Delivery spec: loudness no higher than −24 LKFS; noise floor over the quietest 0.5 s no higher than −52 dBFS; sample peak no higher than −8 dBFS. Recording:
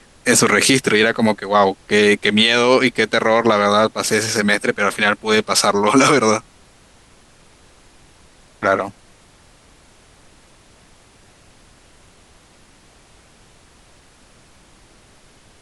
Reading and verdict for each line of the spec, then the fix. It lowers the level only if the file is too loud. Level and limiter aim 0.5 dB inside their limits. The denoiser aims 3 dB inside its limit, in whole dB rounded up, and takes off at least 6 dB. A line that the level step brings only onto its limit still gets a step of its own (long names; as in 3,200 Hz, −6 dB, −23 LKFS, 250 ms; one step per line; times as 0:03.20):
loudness −15.5 LKFS: out of spec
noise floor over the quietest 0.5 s −50 dBFS: out of spec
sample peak −2.0 dBFS: out of spec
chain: level −9 dB